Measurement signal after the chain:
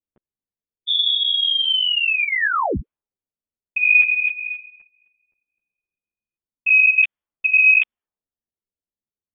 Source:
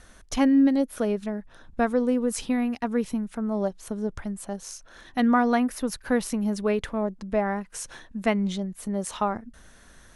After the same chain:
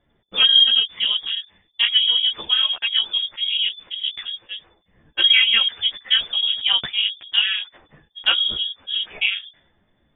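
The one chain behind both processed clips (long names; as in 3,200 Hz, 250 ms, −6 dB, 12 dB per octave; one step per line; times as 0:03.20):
voice inversion scrambler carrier 3,500 Hz
low-pass that shuts in the quiet parts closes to 420 Hz, open at −22.5 dBFS
string-ensemble chorus
level +8 dB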